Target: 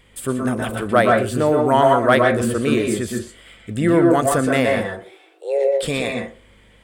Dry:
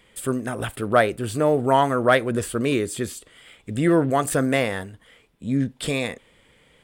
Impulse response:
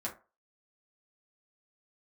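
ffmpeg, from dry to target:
-filter_complex "[0:a]aeval=exprs='val(0)+0.00158*(sin(2*PI*50*n/s)+sin(2*PI*2*50*n/s)/2+sin(2*PI*3*50*n/s)/3+sin(2*PI*4*50*n/s)/4+sin(2*PI*5*50*n/s)/5)':c=same,asettb=1/sr,asplit=3[s0][s1][s2];[s0]atrim=end=4.854[s3];[s1]atrim=start=4.85:end=5.81,asetpts=PTS-STARTPTS,afade=t=in:d=0.004:c=qsin,afade=t=out:st=0.956:d=0.004:c=qsin,afreqshift=280[s4];[s2]atrim=start=5.806[s5];[s3][s4]acrossfade=d=0.004:c1=hsin:c2=qsin[s6];[s6][s5]acrossfade=d=0.004:c1=qsin:c2=hsin,asplit=2[s7][s8];[1:a]atrim=start_sample=2205,lowpass=7400,adelay=118[s9];[s8][s9]afir=irnorm=-1:irlink=0,volume=0.708[s10];[s7][s10]amix=inputs=2:normalize=0,volume=1.19"

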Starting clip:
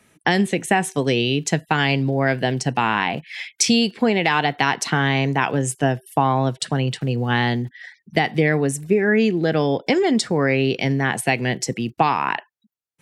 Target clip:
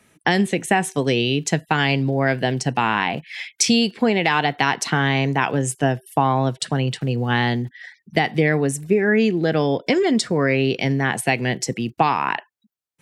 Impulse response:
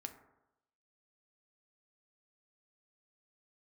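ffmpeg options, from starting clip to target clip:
-filter_complex "[0:a]asettb=1/sr,asplit=3[s0][s1][s2];[s0]atrim=end=9.754[s3];[s1]atrim=start=9.75:end=10.55,asetpts=PTS-STARTPTS,afade=t=in:d=0.004:c=qsin,afade=t=out:st=0.796:d=0.004:c=qsin,asuperstop=centerf=820:order=4:qfactor=7.6[s4];[s2]atrim=start=10.546[s5];[s3][s4]acrossfade=d=0.004:c1=hsin:c2=qsin[s6];[s6][s5]acrossfade=d=0.004:c1=qsin:c2=hsin"

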